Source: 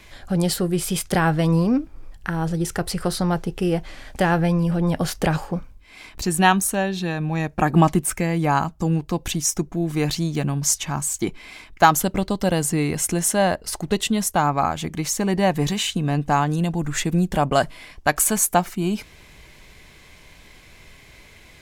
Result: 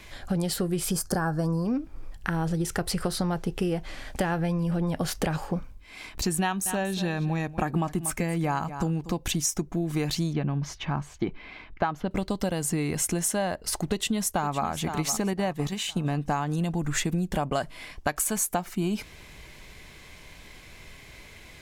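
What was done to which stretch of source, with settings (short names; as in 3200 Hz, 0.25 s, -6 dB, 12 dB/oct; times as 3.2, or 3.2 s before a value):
0.91–1.66 spectral gain 1800–4200 Hz -16 dB
6.42–9.12 echo 0.237 s -16.5 dB
10.33–12.11 air absorption 300 m
13.86–14.65 echo throw 0.51 s, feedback 45%, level -13.5 dB
15.33–16.21 gate -23 dBFS, range -7 dB
whole clip: compressor 10:1, threshold -23 dBFS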